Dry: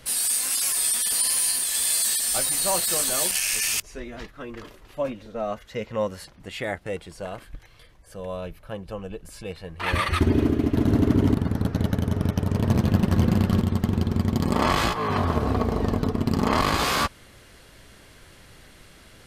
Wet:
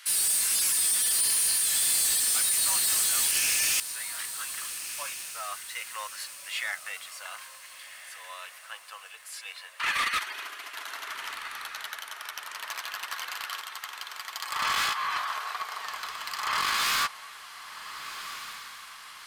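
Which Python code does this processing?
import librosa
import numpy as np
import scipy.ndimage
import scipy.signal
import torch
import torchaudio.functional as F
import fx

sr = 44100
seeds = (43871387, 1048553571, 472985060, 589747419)

y = scipy.signal.sosfilt(scipy.signal.butter(4, 1200.0, 'highpass', fs=sr, output='sos'), x)
y = 10.0 ** (-26.0 / 20.0) * np.tanh(y / 10.0 ** (-26.0 / 20.0))
y = fx.echo_diffused(y, sr, ms=1460, feedback_pct=45, wet_db=-12)
y = y * 10.0 ** (4.0 / 20.0)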